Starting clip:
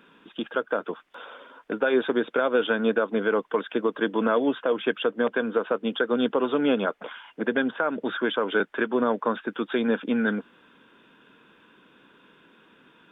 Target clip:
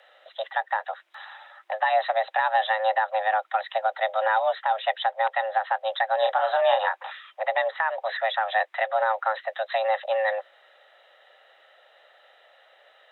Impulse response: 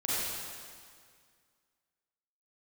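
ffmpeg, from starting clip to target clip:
-filter_complex "[0:a]equalizer=f=160:w=4.5:g=-6.5,asettb=1/sr,asplit=3[a][b][c];[a]atrim=end=6.194[d];[b]atrim=start=6.19:end=7.17,asetpts=PTS-STARTPTS,afade=t=in:d=0.004:c=qsin,afade=t=out:st=0.976:d=0.004:c=qsin,asplit=2[e][f];[f]adelay=31,volume=-4.5dB[g];[e][g]amix=inputs=2:normalize=0,atrim=end_sample=43218[h];[c]atrim=start=7.166[i];[d][h]acrossfade=d=0.004:c1=hsin:c2=qsin[j];[j][i]acrossfade=d=0.004:c1=qsin:c2=hsin,afreqshift=320"

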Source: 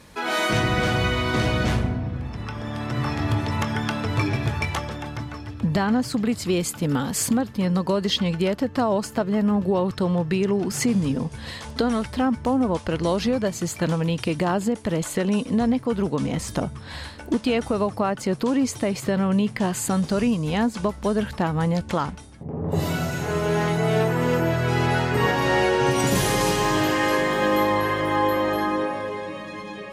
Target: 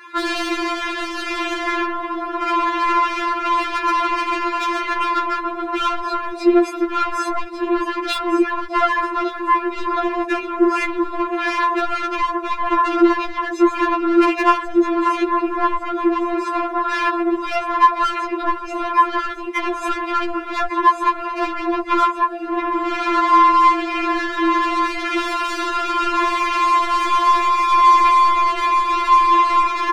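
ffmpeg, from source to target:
-filter_complex "[0:a]acompressor=threshold=-26dB:ratio=6,bass=f=250:g=-12,treble=f=4k:g=-13,aecho=1:1:3.7:1,acrusher=bits=6:mode=log:mix=0:aa=0.000001,asplit=2[a][b];[b]aecho=0:1:1153|2306|3459|4612:0.376|0.124|0.0409|0.0135[c];[a][c]amix=inputs=2:normalize=0,afwtdn=0.0158,asuperstop=centerf=1200:order=20:qfactor=5.9,aemphasis=mode=reproduction:type=cd,asplit=2[d][e];[e]highpass=f=720:p=1,volume=23dB,asoftclip=type=tanh:threshold=-15.5dB[f];[d][f]amix=inputs=2:normalize=0,lowpass=f=3.3k:p=1,volume=-6dB,alimiter=level_in=25dB:limit=-1dB:release=50:level=0:latency=1,afftfilt=real='re*4*eq(mod(b,16),0)':imag='im*4*eq(mod(b,16),0)':win_size=2048:overlap=0.75,volume=-8.5dB"

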